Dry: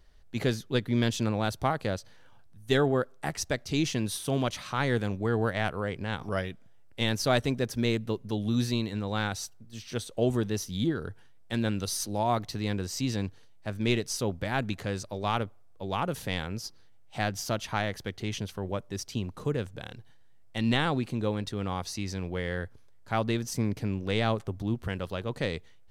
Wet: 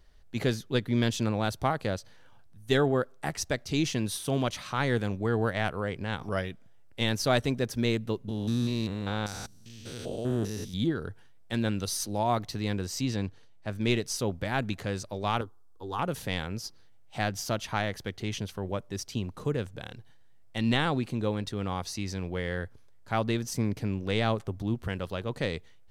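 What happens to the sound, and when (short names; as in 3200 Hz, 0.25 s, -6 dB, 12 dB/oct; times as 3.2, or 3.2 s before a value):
8.28–10.74 stepped spectrum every 0.2 s
13.03–13.7 high shelf 8900 Hz -8.5 dB
15.41–15.99 fixed phaser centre 610 Hz, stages 6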